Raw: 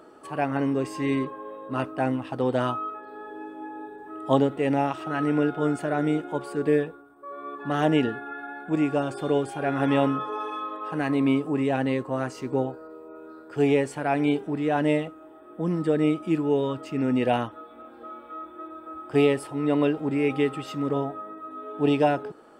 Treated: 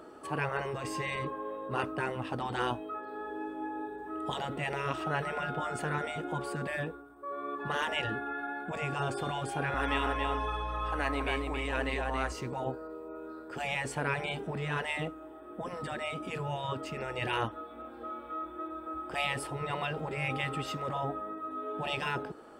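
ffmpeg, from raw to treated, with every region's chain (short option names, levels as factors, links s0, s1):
-filter_complex "[0:a]asettb=1/sr,asplit=3[s0][s1][s2];[s0]atrim=end=9.744[s3];[s1]atrim=start=9.74:end=12.32,asetpts=PTS-STARTPTS,afade=t=in:d=0.004:c=qsin,afade=t=out:st=2.576:d=0.004:c=qsin,highpass=600,aecho=1:1:277:0.562,atrim=end_sample=113778,aeval=exprs='val(0)+0.00447*(sin(2*PI*60*n/s)+sin(2*PI*2*60*n/s)/2+sin(2*PI*3*60*n/s)/3+sin(2*PI*4*60*n/s)/4+sin(2*PI*5*60*n/s)/5)':c=same[s4];[s2]atrim=start=12.316[s5];[s3][s4]acrossfade=d=0.004:c1=hsin:c2=qsin[s6];[s6][s5]acrossfade=d=0.004:c1=qsin:c2=hsin,afftfilt=real='re*lt(hypot(re,im),0.2)':imag='im*lt(hypot(re,im),0.2)':win_size=1024:overlap=0.75,equalizer=f=61:t=o:w=0.57:g=11.5"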